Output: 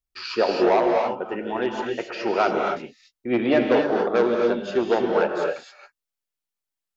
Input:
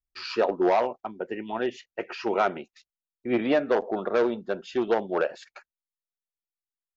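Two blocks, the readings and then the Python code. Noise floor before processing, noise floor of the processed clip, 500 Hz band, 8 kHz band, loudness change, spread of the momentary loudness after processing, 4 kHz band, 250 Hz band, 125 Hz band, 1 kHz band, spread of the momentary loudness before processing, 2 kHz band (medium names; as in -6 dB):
under -85 dBFS, under -85 dBFS, +5.0 dB, no reading, +4.5 dB, 10 LU, +5.5 dB, +5.0 dB, +5.5 dB, +4.5 dB, 13 LU, +5.0 dB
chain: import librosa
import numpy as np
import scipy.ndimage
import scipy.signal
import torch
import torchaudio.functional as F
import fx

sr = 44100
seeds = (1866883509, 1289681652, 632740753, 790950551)

y = fx.rev_gated(x, sr, seeds[0], gate_ms=300, shape='rising', drr_db=1.0)
y = y * 10.0 ** (2.5 / 20.0)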